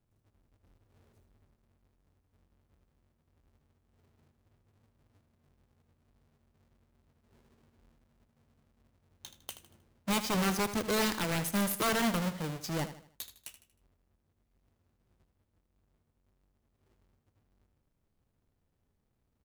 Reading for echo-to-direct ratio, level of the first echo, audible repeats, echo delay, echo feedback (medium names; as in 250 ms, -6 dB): -11.5 dB, -12.0 dB, 3, 78 ms, 39%